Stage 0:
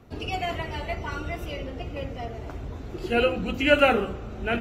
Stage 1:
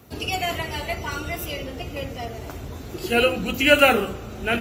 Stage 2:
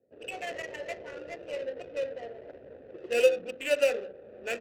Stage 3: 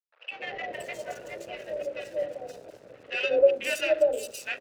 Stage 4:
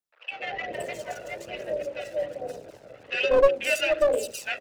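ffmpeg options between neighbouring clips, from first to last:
-af "highpass=60,aemphasis=mode=production:type=75fm,volume=3dB"
-filter_complex "[0:a]dynaudnorm=f=180:g=3:m=7.5dB,asplit=3[a][b][c];[a]bandpass=f=530:t=q:w=8,volume=0dB[d];[b]bandpass=f=1.84k:t=q:w=8,volume=-6dB[e];[c]bandpass=f=2.48k:t=q:w=8,volume=-9dB[f];[d][e][f]amix=inputs=3:normalize=0,adynamicsmooth=sensitivity=5:basefreq=580,volume=-3.5dB"
-filter_complex "[0:a]aeval=exprs='sgn(val(0))*max(abs(val(0))-0.00224,0)':c=same,afreqshift=38,acrossover=split=860|4300[a][b][c];[a]adelay=190[d];[c]adelay=520[e];[d][b][e]amix=inputs=3:normalize=0,volume=4.5dB"
-filter_complex "[0:a]flanger=delay=0.1:depth=1.4:regen=45:speed=1.2:shape=sinusoidal,acrossover=split=260|1400[a][b][c];[b]aeval=exprs='clip(val(0),-1,0.0447)':c=same[d];[a][d][c]amix=inputs=3:normalize=0,volume=7dB"

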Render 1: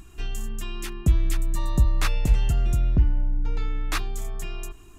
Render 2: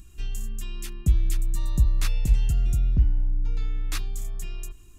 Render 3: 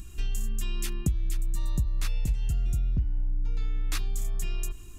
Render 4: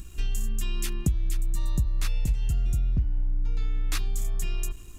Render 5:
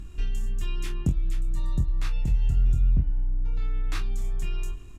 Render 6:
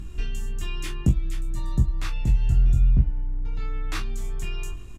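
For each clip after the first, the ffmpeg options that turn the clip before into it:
-af "equalizer=f=780:w=0.35:g=-12"
-af "acompressor=threshold=-30dB:ratio=5,volume=5.5dB"
-af "aeval=exprs='sgn(val(0))*max(abs(val(0))-0.00158,0)':c=same,volume=2dB"
-af "aemphasis=mode=reproduction:type=75kf,aecho=1:1:25|47:0.562|0.224"
-filter_complex "[0:a]asplit=2[a][b];[b]adelay=16,volume=-7dB[c];[a][c]amix=inputs=2:normalize=0,volume=3.5dB"

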